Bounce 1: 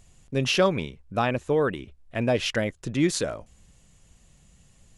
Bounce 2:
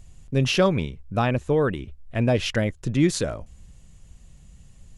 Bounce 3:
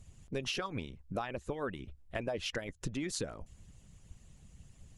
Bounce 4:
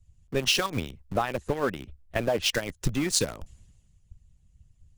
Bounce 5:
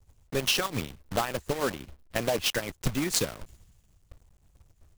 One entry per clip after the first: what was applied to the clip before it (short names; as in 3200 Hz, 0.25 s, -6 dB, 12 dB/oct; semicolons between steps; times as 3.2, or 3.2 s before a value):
low shelf 160 Hz +11 dB
harmonic-percussive split harmonic -17 dB; compressor 6:1, threshold -34 dBFS, peak gain reduction 13 dB
in parallel at -8 dB: bit-crush 6-bit; on the sum: three-band expander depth 70%; gain +6 dB
block floating point 3-bit; gain -2 dB